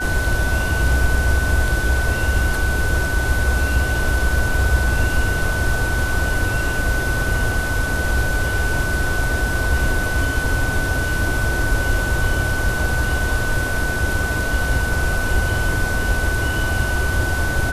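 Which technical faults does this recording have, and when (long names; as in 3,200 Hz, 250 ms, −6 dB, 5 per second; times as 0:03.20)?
whistle 1,500 Hz −23 dBFS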